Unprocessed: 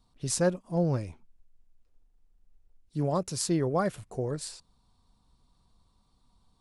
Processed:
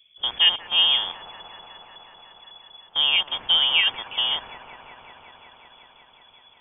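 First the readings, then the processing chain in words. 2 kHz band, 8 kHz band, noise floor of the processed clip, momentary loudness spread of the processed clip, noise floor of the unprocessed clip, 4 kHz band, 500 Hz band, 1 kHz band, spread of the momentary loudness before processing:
+17.5 dB, under -40 dB, -55 dBFS, 11 LU, -69 dBFS, +27.0 dB, -13.5 dB, +3.0 dB, 12 LU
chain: rattle on loud lows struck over -44 dBFS, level -30 dBFS; feedback echo behind a high-pass 184 ms, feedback 84%, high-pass 1.9 kHz, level -8.5 dB; frequency inversion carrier 3.4 kHz; trim +7 dB

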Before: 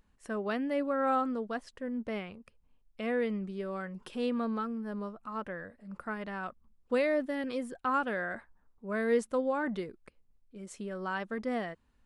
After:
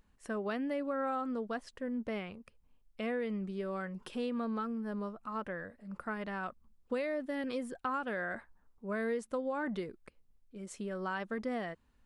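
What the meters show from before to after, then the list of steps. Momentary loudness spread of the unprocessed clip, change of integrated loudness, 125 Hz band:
13 LU, -4.0 dB, -1.0 dB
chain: compression 5:1, threshold -32 dBFS, peak gain reduction 9 dB

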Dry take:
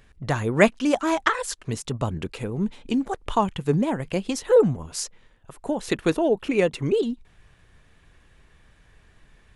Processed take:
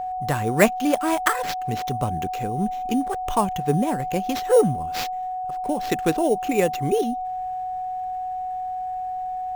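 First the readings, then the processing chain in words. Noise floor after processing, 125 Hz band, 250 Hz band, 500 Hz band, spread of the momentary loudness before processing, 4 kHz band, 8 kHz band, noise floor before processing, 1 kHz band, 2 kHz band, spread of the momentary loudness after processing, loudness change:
-29 dBFS, 0.0 dB, 0.0 dB, 0.0 dB, 12 LU, +0.5 dB, +1.0 dB, -57 dBFS, +8.0 dB, -0.5 dB, 10 LU, 0.0 dB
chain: sample-rate reducer 9.5 kHz, jitter 0%; whistle 740 Hz -26 dBFS

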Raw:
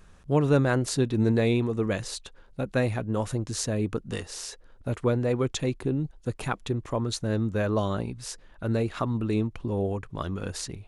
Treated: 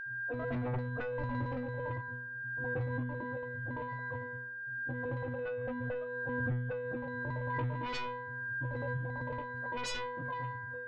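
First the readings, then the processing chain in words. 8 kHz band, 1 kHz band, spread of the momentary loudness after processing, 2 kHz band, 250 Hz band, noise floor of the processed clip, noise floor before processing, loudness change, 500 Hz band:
under -15 dB, -4.0 dB, 4 LU, +2.0 dB, -14.5 dB, -43 dBFS, -53 dBFS, -9.5 dB, -10.5 dB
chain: spectrum inverted on a logarithmic axis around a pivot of 440 Hz; LFO band-pass square 8.9 Hz 880–4600 Hz; gate with hold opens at -58 dBFS; one-sided clip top -30.5 dBFS; tilt EQ -3 dB/octave; level-controlled noise filter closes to 410 Hz, open at -30.5 dBFS; pitch-class resonator B, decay 0.62 s; whistle 1.6 kHz -68 dBFS; sine folder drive 19 dB, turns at -33 dBFS; compression, threshold -42 dBFS, peak gain reduction 7 dB; bass shelf 200 Hz +9.5 dB; swell ahead of each attack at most 21 dB/s; trim +4 dB

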